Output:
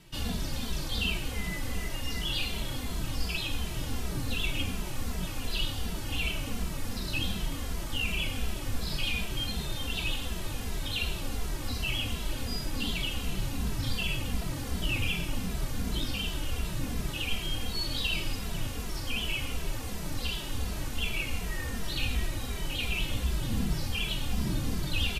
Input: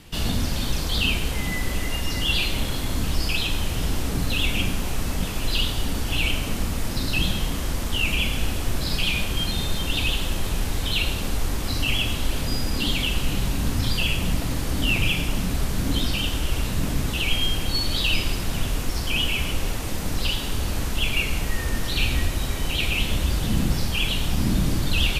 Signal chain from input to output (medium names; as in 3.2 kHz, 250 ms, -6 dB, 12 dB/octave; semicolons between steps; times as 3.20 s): endless flanger 2.6 ms -2.7 Hz; trim -5 dB